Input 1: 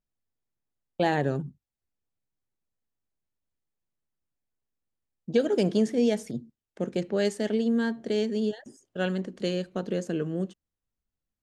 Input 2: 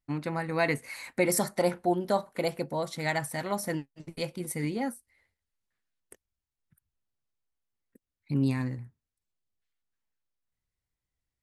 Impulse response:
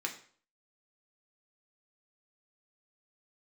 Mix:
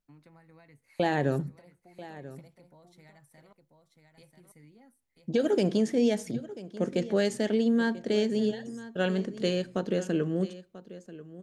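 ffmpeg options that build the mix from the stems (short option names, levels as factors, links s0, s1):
-filter_complex "[0:a]alimiter=limit=0.141:level=0:latency=1:release=72,volume=1.06,asplit=3[s0][s1][s2];[s1]volume=0.158[s3];[s2]volume=0.158[s4];[1:a]acrossover=split=140[s5][s6];[s6]acompressor=threshold=0.0141:ratio=10[s7];[s5][s7]amix=inputs=2:normalize=0,volume=0.119,asplit=3[s8][s9][s10];[s8]atrim=end=3.53,asetpts=PTS-STARTPTS,afade=t=out:st=3.526:d=0.004:c=hsin[s11];[s9]atrim=start=3.53:end=4.15,asetpts=PTS-STARTPTS,volume=0[s12];[s10]atrim=start=4.15,asetpts=PTS-STARTPTS,afade=t=in:d=0.004:c=hsin[s13];[s11][s12][s13]concat=n=3:v=0:a=1,asplit=3[s14][s15][s16];[s15]volume=0.0841[s17];[s16]volume=0.562[s18];[2:a]atrim=start_sample=2205[s19];[s3][s17]amix=inputs=2:normalize=0[s20];[s20][s19]afir=irnorm=-1:irlink=0[s21];[s4][s18]amix=inputs=2:normalize=0,aecho=0:1:989:1[s22];[s0][s14][s21][s22]amix=inputs=4:normalize=0"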